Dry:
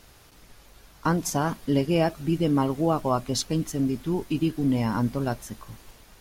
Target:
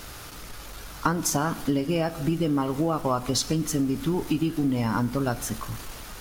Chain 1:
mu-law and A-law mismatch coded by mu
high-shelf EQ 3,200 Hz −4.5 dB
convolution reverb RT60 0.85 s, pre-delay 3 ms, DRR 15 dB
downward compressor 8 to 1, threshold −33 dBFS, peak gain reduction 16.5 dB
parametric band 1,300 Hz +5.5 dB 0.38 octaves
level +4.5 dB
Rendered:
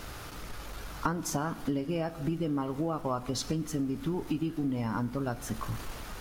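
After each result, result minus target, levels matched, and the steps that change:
downward compressor: peak gain reduction +6.5 dB; 8,000 Hz band −2.5 dB
change: downward compressor 8 to 1, threshold −25.5 dBFS, peak gain reduction 10 dB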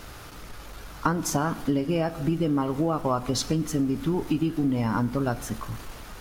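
8,000 Hz band −4.0 dB
change: high-shelf EQ 3,200 Hz +2.5 dB

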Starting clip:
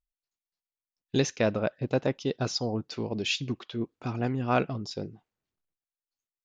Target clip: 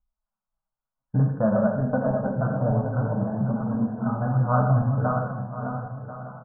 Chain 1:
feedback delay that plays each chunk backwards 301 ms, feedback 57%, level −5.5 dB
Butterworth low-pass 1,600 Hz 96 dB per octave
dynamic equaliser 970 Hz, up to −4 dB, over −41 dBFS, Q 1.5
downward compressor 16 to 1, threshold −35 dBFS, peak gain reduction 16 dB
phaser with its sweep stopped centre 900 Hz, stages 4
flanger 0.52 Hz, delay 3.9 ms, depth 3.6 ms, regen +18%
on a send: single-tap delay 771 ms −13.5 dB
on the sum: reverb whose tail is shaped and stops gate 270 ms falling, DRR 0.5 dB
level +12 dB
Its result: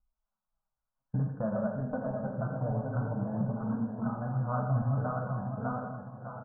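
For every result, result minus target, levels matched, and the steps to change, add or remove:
downward compressor: peak gain reduction +11 dB; echo 269 ms early
change: downward compressor 16 to 1, threshold −23.5 dBFS, peak gain reduction 5.5 dB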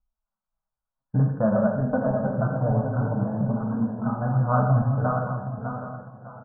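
echo 269 ms early
change: single-tap delay 1,040 ms −13.5 dB

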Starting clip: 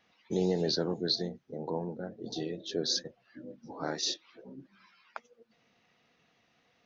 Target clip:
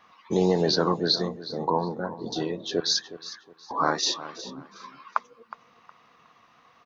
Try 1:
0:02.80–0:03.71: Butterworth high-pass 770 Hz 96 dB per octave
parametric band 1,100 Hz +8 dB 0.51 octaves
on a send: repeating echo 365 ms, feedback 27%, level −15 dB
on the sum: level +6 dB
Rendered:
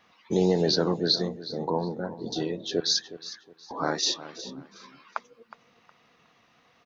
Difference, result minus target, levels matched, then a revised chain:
1,000 Hz band −6.0 dB
0:02.80–0:03.71: Butterworth high-pass 770 Hz 96 dB per octave
parametric band 1,100 Hz +19.5 dB 0.51 octaves
on a send: repeating echo 365 ms, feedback 27%, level −15 dB
on the sum: level +6 dB

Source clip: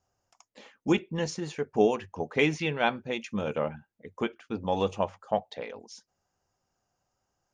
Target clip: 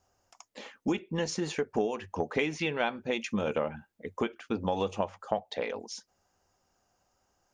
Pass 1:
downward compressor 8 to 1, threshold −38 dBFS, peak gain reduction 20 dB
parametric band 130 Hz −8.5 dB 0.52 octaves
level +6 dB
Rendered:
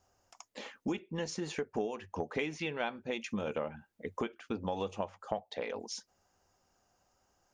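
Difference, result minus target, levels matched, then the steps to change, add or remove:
downward compressor: peak gain reduction +5.5 dB
change: downward compressor 8 to 1, threshold −31.5 dBFS, peak gain reduction 14.5 dB

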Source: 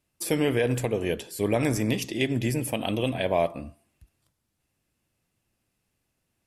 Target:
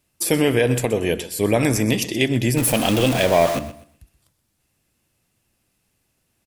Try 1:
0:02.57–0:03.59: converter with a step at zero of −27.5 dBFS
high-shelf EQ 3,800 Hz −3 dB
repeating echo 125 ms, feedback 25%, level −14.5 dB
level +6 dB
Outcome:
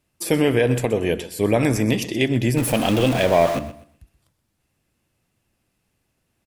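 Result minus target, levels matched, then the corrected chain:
8,000 Hz band −5.5 dB
0:02.57–0:03.59: converter with a step at zero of −27.5 dBFS
high-shelf EQ 3,800 Hz +4 dB
repeating echo 125 ms, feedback 25%, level −14.5 dB
level +6 dB

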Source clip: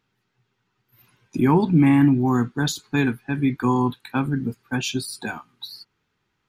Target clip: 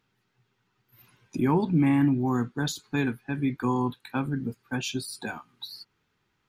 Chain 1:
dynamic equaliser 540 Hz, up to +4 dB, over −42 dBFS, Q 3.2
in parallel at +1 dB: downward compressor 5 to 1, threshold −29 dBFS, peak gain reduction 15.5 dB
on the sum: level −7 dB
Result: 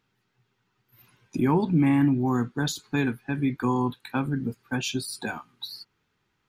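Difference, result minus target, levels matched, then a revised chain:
downward compressor: peak gain reduction −9 dB
dynamic equaliser 540 Hz, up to +4 dB, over −42 dBFS, Q 3.2
in parallel at +1 dB: downward compressor 5 to 1, threshold −40 dBFS, peak gain reduction 24 dB
on the sum: level −7 dB

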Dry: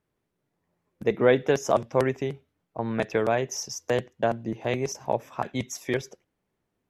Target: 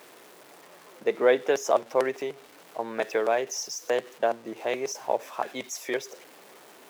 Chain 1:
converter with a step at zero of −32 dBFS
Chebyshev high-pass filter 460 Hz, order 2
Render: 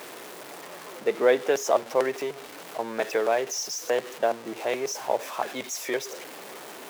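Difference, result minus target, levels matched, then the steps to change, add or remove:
converter with a step at zero: distortion +9 dB
change: converter with a step at zero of −41.5 dBFS

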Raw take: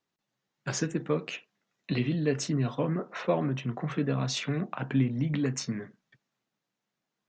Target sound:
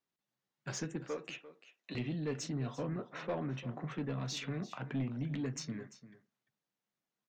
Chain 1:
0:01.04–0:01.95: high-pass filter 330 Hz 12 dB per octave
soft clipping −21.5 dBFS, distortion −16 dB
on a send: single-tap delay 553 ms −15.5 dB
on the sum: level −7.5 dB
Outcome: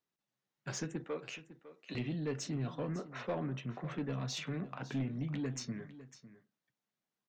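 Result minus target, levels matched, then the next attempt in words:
echo 209 ms late
0:01.04–0:01.95: high-pass filter 330 Hz 12 dB per octave
soft clipping −21.5 dBFS, distortion −16 dB
on a send: single-tap delay 344 ms −15.5 dB
on the sum: level −7.5 dB

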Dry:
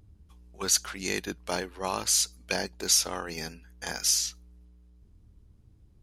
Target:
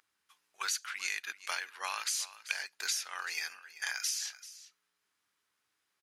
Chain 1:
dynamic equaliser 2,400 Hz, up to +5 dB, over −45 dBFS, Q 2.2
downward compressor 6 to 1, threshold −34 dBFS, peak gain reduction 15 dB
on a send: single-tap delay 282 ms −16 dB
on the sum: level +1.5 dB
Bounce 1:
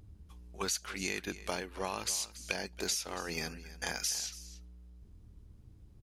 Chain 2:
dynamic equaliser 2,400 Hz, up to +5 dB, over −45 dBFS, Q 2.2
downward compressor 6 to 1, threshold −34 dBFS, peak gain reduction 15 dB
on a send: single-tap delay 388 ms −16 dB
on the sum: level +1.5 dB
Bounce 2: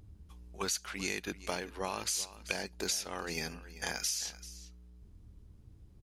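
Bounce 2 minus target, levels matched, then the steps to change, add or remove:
2,000 Hz band −3.0 dB
add after dynamic equaliser: high-pass with resonance 1,500 Hz, resonance Q 1.6

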